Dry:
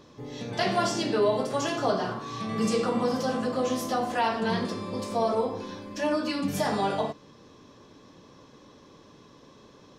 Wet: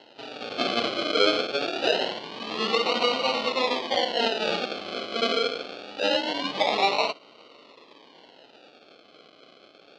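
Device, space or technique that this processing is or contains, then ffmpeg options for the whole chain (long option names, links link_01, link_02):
circuit-bent sampling toy: -af "acrusher=samples=37:mix=1:aa=0.000001:lfo=1:lforange=22.2:lforate=0.24,highpass=480,equalizer=frequency=1700:width_type=q:width=4:gain=-7,equalizer=frequency=3000:width_type=q:width=4:gain=8,equalizer=frequency=4300:width_type=q:width=4:gain=8,lowpass=frequency=4700:width=0.5412,lowpass=frequency=4700:width=1.3066,volume=5dB"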